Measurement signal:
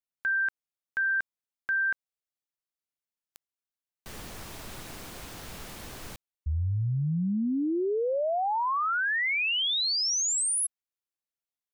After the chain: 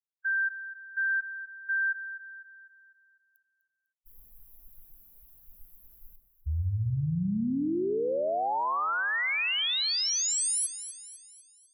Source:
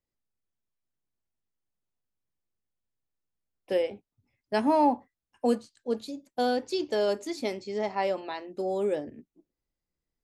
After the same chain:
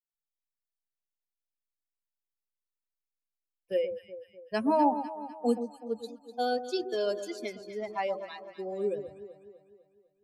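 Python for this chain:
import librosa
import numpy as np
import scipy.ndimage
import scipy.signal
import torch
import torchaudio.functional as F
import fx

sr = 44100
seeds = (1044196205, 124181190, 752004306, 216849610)

y = fx.bin_expand(x, sr, power=2.0)
y = fx.echo_alternate(y, sr, ms=125, hz=980.0, feedback_pct=69, wet_db=-9.0)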